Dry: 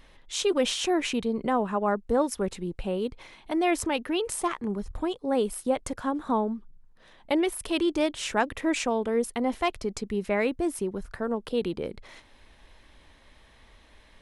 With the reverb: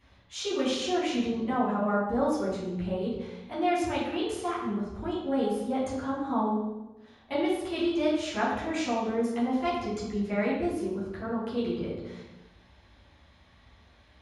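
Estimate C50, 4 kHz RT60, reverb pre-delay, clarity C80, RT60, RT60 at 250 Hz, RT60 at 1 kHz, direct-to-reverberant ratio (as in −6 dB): 1.0 dB, 0.75 s, 3 ms, 4.0 dB, 1.1 s, 1.7 s, 0.95 s, −9.0 dB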